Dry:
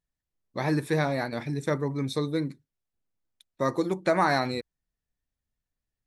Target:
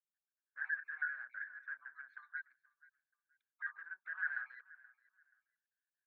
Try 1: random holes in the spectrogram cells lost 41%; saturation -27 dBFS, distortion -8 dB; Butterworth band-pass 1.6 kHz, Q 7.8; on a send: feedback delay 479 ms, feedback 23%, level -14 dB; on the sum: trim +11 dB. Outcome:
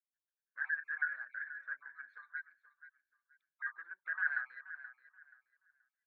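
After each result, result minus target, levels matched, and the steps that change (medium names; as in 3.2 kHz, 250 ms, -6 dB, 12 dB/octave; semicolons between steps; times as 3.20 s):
echo-to-direct +7.5 dB; saturation: distortion -5 dB
change: feedback delay 479 ms, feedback 23%, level -21.5 dB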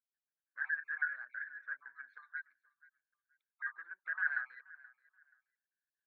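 saturation: distortion -5 dB
change: saturation -35 dBFS, distortion -4 dB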